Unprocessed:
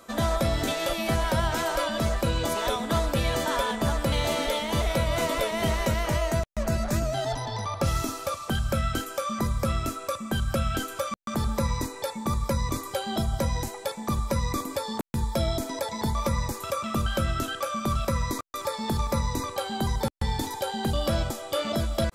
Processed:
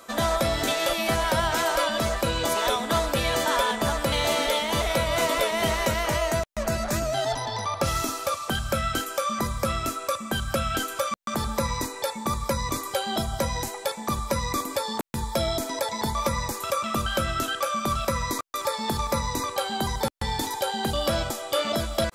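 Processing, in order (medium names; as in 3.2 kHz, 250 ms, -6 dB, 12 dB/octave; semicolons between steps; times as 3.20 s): bass shelf 310 Hz -9 dB; trim +4.5 dB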